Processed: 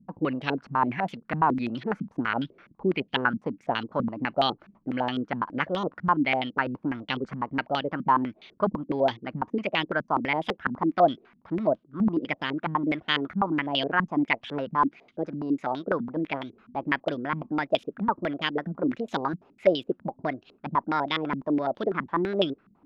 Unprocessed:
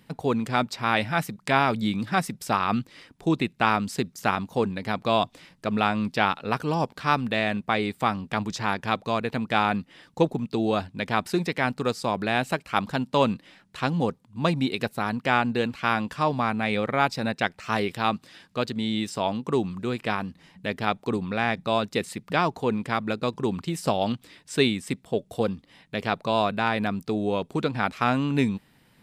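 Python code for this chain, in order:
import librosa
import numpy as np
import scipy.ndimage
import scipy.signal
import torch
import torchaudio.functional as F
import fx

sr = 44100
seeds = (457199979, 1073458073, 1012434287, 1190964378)

y = fx.speed_glide(x, sr, from_pct=113, to_pct=141)
y = fx.filter_held_lowpass(y, sr, hz=12.0, low_hz=200.0, high_hz=3300.0)
y = y * librosa.db_to_amplitude(-5.0)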